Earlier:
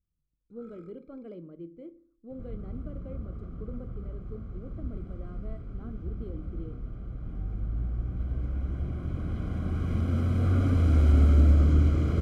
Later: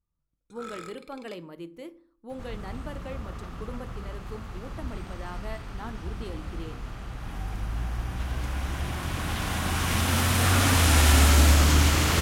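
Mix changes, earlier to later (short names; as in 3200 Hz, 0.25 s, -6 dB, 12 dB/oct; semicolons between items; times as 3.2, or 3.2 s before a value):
first sound +5.0 dB; master: remove running mean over 49 samples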